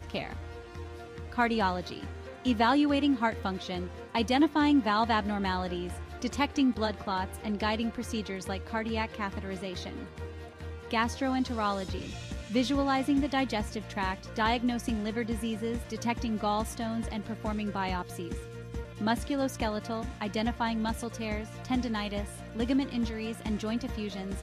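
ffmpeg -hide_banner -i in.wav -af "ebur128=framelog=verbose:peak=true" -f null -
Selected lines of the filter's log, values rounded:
Integrated loudness:
  I:         -31.0 LUFS
  Threshold: -41.3 LUFS
Loudness range:
  LRA:         5.5 LU
  Threshold: -51.1 LUFS
  LRA low:   -33.7 LUFS
  LRA high:  -28.2 LUFS
True peak:
  Peak:      -13.6 dBFS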